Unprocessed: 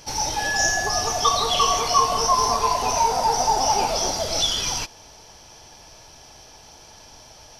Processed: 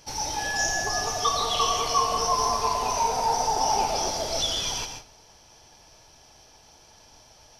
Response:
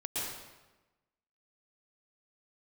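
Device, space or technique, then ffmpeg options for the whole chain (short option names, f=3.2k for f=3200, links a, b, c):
keyed gated reverb: -filter_complex "[0:a]asplit=3[a][b][c];[1:a]atrim=start_sample=2205[d];[b][d]afir=irnorm=-1:irlink=0[e];[c]apad=whole_len=334988[f];[e][f]sidechaingate=range=-33dB:threshold=-43dB:ratio=16:detection=peak,volume=-7dB[g];[a][g]amix=inputs=2:normalize=0,volume=-7.5dB"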